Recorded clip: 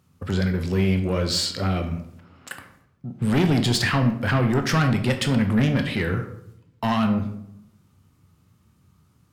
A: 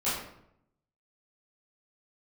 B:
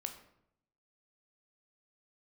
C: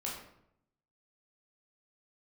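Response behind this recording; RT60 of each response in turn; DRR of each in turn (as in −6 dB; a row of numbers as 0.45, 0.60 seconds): B; 0.75, 0.75, 0.75 seconds; −13.0, 5.5, −4.5 decibels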